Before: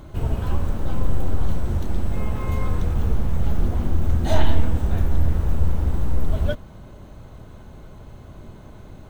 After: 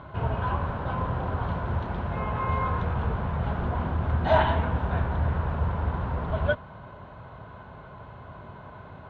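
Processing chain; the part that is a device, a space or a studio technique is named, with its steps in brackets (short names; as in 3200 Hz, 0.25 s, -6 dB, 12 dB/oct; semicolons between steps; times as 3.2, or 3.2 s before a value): guitar cabinet (speaker cabinet 89–3400 Hz, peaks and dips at 220 Hz -5 dB, 320 Hz -8 dB, 680 Hz +4 dB, 1000 Hz +10 dB, 1500 Hz +7 dB)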